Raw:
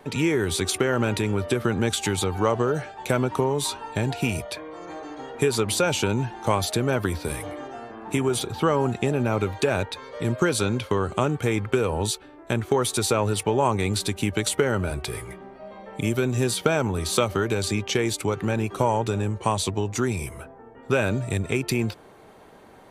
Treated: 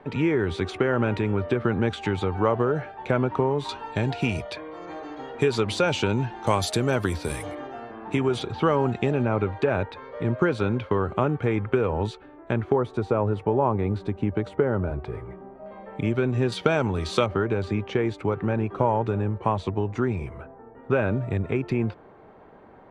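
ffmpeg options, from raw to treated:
-af "asetnsamples=n=441:p=0,asendcmd='3.69 lowpass f 4200;6.47 lowpass f 9300;7.55 lowpass f 3500;9.25 lowpass f 2000;12.72 lowpass f 1100;15.66 lowpass f 2200;16.52 lowpass f 3800;17.26 lowpass f 1700',lowpass=2.2k"

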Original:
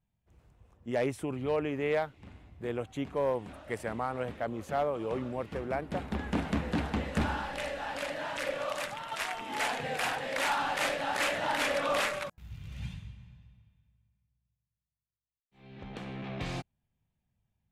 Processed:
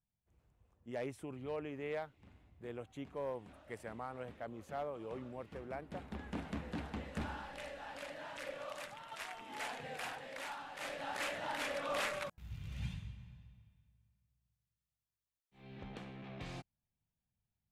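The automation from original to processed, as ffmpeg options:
-af "volume=5dB,afade=t=out:st=9.99:d=0.72:silence=0.446684,afade=t=in:st=10.71:d=0.32:silence=0.375837,afade=t=in:st=11.86:d=0.66:silence=0.421697,afade=t=out:st=15.7:d=0.42:silence=0.398107"

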